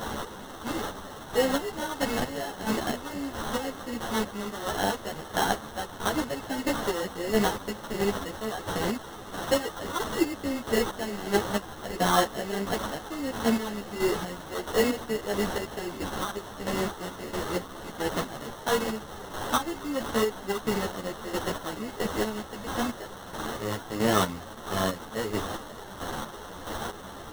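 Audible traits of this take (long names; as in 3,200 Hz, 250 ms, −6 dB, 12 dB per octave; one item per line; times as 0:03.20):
a quantiser's noise floor 6 bits, dither triangular
chopped level 1.5 Hz, depth 60%, duty 35%
aliases and images of a low sample rate 2,400 Hz, jitter 0%
a shimmering, thickened sound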